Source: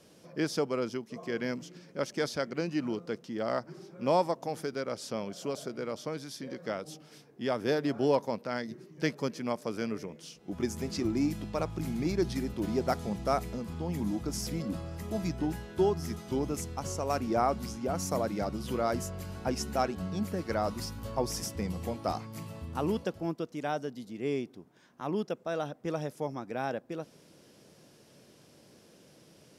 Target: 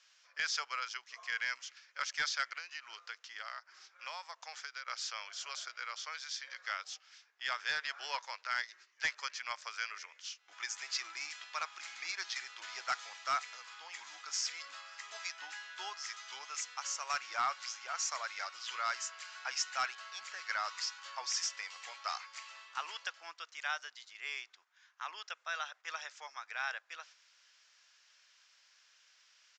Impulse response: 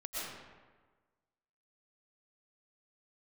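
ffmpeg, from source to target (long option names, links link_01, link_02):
-filter_complex "[0:a]agate=range=-6dB:threshold=-48dB:ratio=16:detection=peak,highpass=frequency=1400:width=0.5412,highpass=frequency=1400:width=1.3066,highshelf=frequency=2100:gain=-6,asettb=1/sr,asplit=3[link_01][link_02][link_03];[link_01]atrim=end=2.574[link_04];[link_02]atrim=start=2.57:end=4.88,asetpts=PTS-STARTPTS,afade=type=in:duration=0.004:curve=qsin,afade=type=out:start_time=2.306:duration=0.004:curve=qsin,acompressor=threshold=-50dB:ratio=10[link_05];[link_03]atrim=start=4.876[link_06];[link_04][link_05]acrossfade=duration=0.004:curve1=hsin:curve2=qsin[link_07];[link_07][link_06]acrossfade=duration=0.004:curve1=qsin:curve2=hsin,asoftclip=type=tanh:threshold=-29.5dB,acrusher=bits=8:mode=log:mix=0:aa=0.000001,volume=35dB,asoftclip=hard,volume=-35dB,aresample=16000,aresample=44100,volume=9.5dB"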